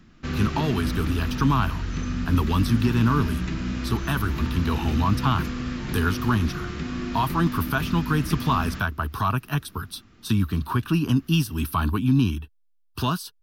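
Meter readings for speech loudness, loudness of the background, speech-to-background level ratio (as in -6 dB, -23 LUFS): -25.0 LUFS, -30.0 LUFS, 5.0 dB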